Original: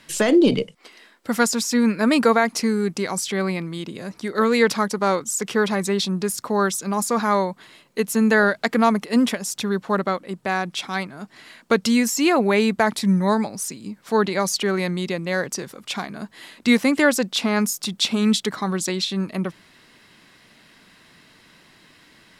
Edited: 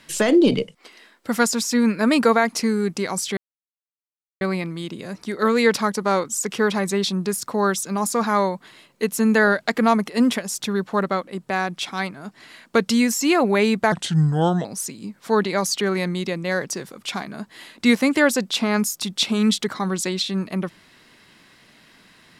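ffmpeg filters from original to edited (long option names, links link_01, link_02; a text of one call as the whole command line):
ffmpeg -i in.wav -filter_complex "[0:a]asplit=4[link_01][link_02][link_03][link_04];[link_01]atrim=end=3.37,asetpts=PTS-STARTPTS,afade=type=out:start_time=3.366:duration=0.004:curve=hsin,apad=pad_dur=1.04[link_05];[link_02]atrim=start=3.37:end=12.884,asetpts=PTS-STARTPTS,afade=type=in:duration=0.004:curve=hsin[link_06];[link_03]atrim=start=12.88:end=13.47,asetpts=PTS-STARTPTS,asetrate=35721,aresample=44100,atrim=end_sample=32122,asetpts=PTS-STARTPTS[link_07];[link_04]atrim=start=13.466[link_08];[link_05][link_06]concat=n=2:v=0:a=1[link_09];[link_09][link_07]acrossfade=duration=0.004:curve1=hsin:curve2=hsin[link_10];[link_10][link_08]acrossfade=duration=0.004:curve1=hsin:curve2=hsin" out.wav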